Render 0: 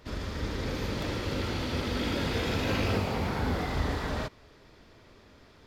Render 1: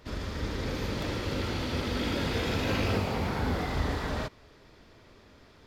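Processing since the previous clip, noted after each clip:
no processing that can be heard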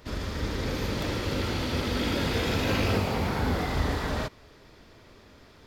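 high-shelf EQ 9,100 Hz +5 dB
level +2.5 dB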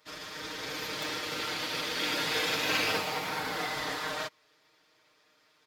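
high-pass filter 1,300 Hz 6 dB per octave
comb filter 6.5 ms, depth 86%
expander for the loud parts 1.5 to 1, over −53 dBFS
level +2.5 dB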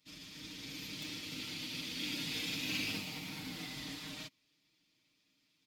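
drawn EQ curve 130 Hz 0 dB, 260 Hz +4 dB, 440 Hz −16 dB, 1,600 Hz −18 dB, 2,400 Hz −4 dB
level −3 dB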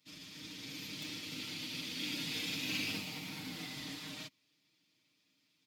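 high-pass filter 79 Hz

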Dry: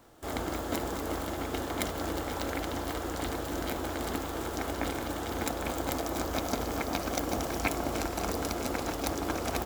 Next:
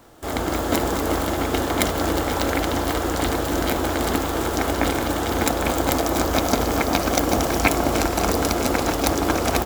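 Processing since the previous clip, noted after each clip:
automatic gain control gain up to 3.5 dB
level +8 dB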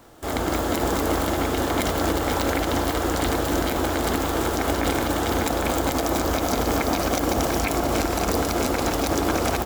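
brickwall limiter −11.5 dBFS, peak gain reduction 10.5 dB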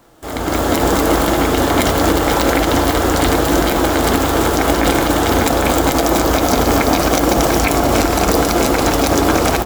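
automatic gain control gain up to 10.5 dB
flanger 0.82 Hz, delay 5.7 ms, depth 1.8 ms, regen −71%
level +4.5 dB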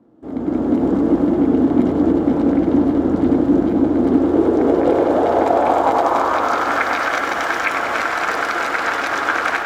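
band-pass filter sweep 250 Hz → 1,600 Hz, 0:03.93–0:06.88
echo with a time of its own for lows and highs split 730 Hz, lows 510 ms, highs 98 ms, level −8 dB
level +5 dB

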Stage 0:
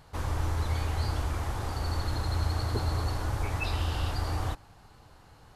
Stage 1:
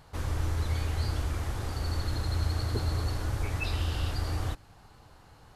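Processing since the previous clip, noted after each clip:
dynamic equaliser 900 Hz, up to −6 dB, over −52 dBFS, Q 1.4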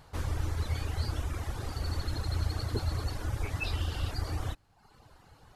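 reverb reduction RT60 0.88 s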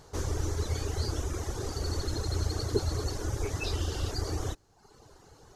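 graphic EQ with 15 bands 400 Hz +11 dB, 2,500 Hz −4 dB, 6,300 Hz +12 dB

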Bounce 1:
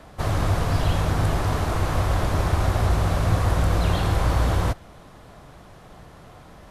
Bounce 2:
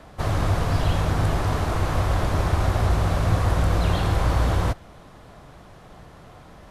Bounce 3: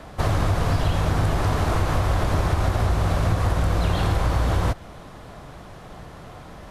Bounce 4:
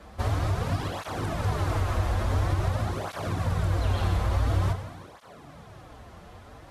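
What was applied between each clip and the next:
high-shelf EQ 8,800 Hz −4 dB
downward compressor, threshold −22 dBFS, peak gain reduction 7.5 dB; level +5 dB
dense smooth reverb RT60 2 s, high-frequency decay 0.95×, pre-delay 0 ms, DRR 6.5 dB; through-zero flanger with one copy inverted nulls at 0.48 Hz, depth 7.8 ms; level −4 dB

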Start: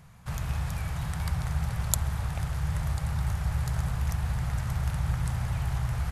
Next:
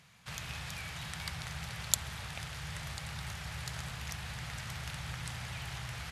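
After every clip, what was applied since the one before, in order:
meter weighting curve D
level −7 dB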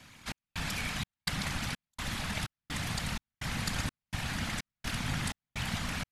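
random phases in short frames
gate pattern "xxxx...xx" 189 BPM −60 dB
level +7 dB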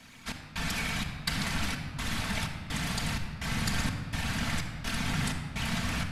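rectangular room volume 3,200 cubic metres, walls mixed, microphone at 1.6 metres
level +1 dB

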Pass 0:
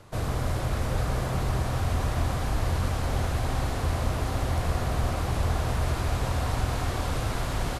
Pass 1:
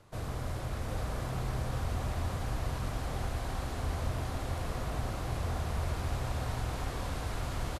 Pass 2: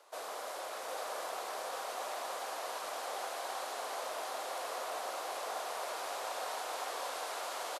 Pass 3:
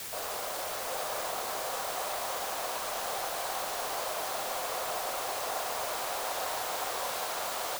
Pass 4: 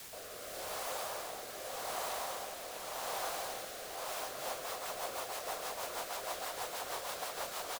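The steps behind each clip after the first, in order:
single-tap delay 745 ms −5 dB; level −8.5 dB
high-pass filter 520 Hz 24 dB per octave; parametric band 2,000 Hz −4 dB 1.3 octaves; level +4 dB
low-pass filter 10,000 Hz 12 dB per octave; in parallel at −4 dB: bit-depth reduction 6 bits, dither triangular
single-tap delay 402 ms −5 dB; rotating-speaker cabinet horn 0.85 Hz, later 6.3 Hz, at 0:03.90; level −4.5 dB

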